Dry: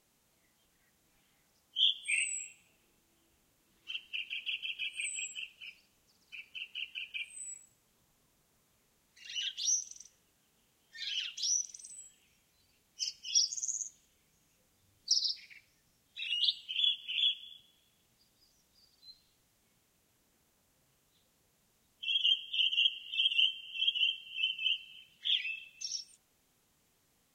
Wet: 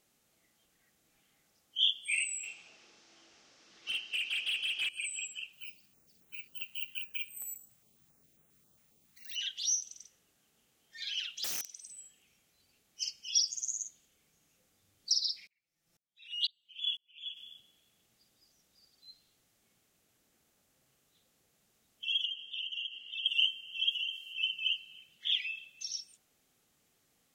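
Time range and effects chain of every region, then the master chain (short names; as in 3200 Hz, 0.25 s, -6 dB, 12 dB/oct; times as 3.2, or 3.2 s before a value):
2.43–4.89 synth low-pass 5500 Hz, resonance Q 3.6 + overdrive pedal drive 20 dB, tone 2200 Hz, clips at -23 dBFS
5.53–9.36 bell 140 Hz +5.5 dB 2.6 oct + careless resampling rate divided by 2×, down none, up zero stuff + stepped notch 7.4 Hz 360–4700 Hz
11.44–11.87 low shelf 260 Hz -11 dB + wrapped overs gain 31 dB
15.47–17.37 comb 5.9 ms, depth 67% + dB-ramp tremolo swelling 2 Hz, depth 37 dB
22.25–23.26 HPF 140 Hz + air absorption 57 m + compressor 4:1, threshold -36 dBFS
23.91–24.33 HPF 250 Hz + compressor 4:1, threshold -36 dBFS + high shelf 4200 Hz +8 dB
whole clip: low shelf 91 Hz -8.5 dB; notch 980 Hz, Q 7.8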